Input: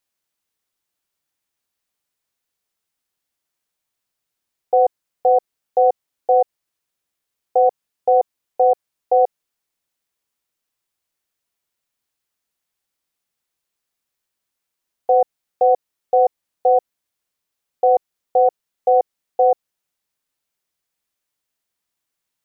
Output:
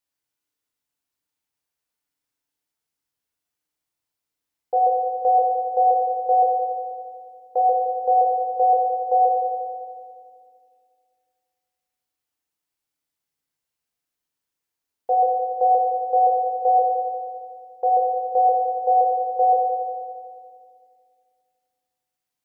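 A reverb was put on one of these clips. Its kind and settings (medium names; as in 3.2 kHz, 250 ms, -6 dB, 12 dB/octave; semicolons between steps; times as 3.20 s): FDN reverb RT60 2.1 s, low-frequency decay 1.55×, high-frequency decay 0.75×, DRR 0 dB; trim -7 dB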